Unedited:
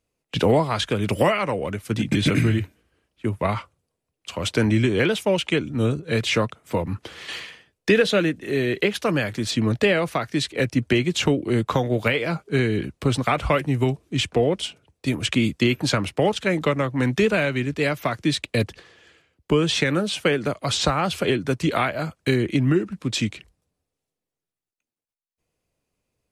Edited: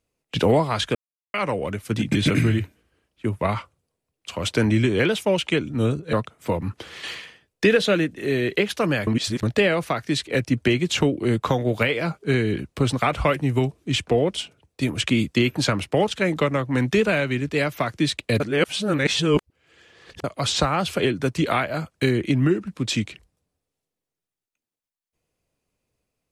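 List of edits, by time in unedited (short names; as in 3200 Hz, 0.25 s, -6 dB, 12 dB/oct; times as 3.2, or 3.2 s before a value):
0.95–1.34 mute
6.13–6.38 cut
9.32–9.68 reverse
18.65–20.49 reverse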